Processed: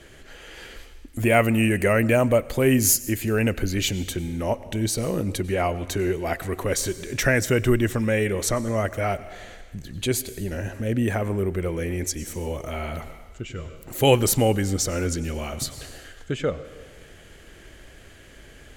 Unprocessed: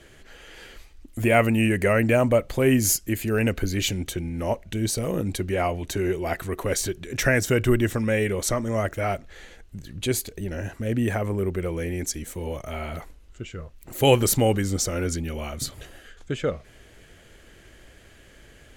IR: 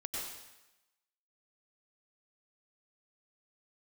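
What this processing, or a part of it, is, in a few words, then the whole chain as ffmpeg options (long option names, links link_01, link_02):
ducked reverb: -filter_complex "[0:a]asplit=3[link_01][link_02][link_03];[1:a]atrim=start_sample=2205[link_04];[link_02][link_04]afir=irnorm=-1:irlink=0[link_05];[link_03]apad=whole_len=827394[link_06];[link_05][link_06]sidechaincompress=threshold=-32dB:ratio=8:attack=10:release=483,volume=-5dB[link_07];[link_01][link_07]amix=inputs=2:normalize=0,asettb=1/sr,asplit=3[link_08][link_09][link_10];[link_08]atrim=end=1.264[link_11];[link_09]atrim=start=1.26:end=3.1,asetpts=PTS-STARTPTS,afade=type=in:duration=0.004:curve=qsin,afade=type=out:start_time=1.836:duration=0.004:curve=qsin,highshelf=frequency=8200:gain=5[link_12];[link_10]atrim=start=3.096[link_13];[link_11][link_12]acrossfade=duration=0.004:curve1=hsin:curve2=qsin[link_14];[link_14][link_13]acrossfade=duration=0.004:curve1=qsin:curve2=hsin"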